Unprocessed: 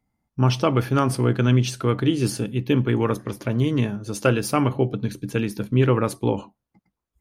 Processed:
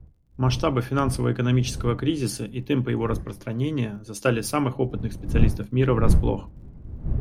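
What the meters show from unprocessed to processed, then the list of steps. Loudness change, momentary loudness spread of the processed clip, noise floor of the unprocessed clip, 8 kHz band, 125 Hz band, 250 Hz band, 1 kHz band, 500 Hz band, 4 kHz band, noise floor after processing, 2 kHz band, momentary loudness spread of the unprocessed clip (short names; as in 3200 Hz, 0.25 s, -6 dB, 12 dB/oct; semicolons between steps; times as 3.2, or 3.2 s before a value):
-2.5 dB, 10 LU, -83 dBFS, -1.5 dB, -2.0 dB, -2.5 dB, -3.0 dB, -3.0 dB, -2.5 dB, -47 dBFS, -3.0 dB, 7 LU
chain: wind noise 120 Hz -26 dBFS; crackle 59/s -47 dBFS; three-band expander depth 40%; gain -3 dB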